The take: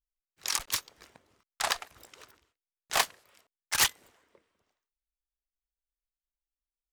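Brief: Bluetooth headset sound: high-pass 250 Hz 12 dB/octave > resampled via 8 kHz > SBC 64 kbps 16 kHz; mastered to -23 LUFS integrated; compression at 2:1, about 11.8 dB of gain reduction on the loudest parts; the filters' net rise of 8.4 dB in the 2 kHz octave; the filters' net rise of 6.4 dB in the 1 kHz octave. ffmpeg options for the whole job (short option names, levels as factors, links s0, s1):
-af "equalizer=f=1000:t=o:g=5.5,equalizer=f=2000:t=o:g=8.5,acompressor=threshold=0.0141:ratio=2,highpass=250,aresample=8000,aresample=44100,volume=5.01" -ar 16000 -c:a sbc -b:a 64k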